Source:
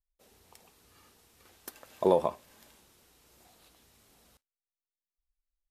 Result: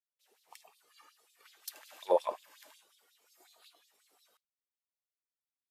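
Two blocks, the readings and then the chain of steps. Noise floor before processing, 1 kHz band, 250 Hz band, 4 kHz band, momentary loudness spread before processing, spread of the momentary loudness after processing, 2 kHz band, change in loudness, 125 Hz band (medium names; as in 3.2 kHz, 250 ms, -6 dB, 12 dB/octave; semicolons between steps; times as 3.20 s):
under -85 dBFS, -3.5 dB, -14.5 dB, +0.5 dB, 15 LU, 18 LU, -1.5 dB, -7.0 dB, under -25 dB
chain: spectral noise reduction 10 dB; peak limiter -19 dBFS, peak gain reduction 8 dB; LFO high-pass sine 5.5 Hz 400–4200 Hz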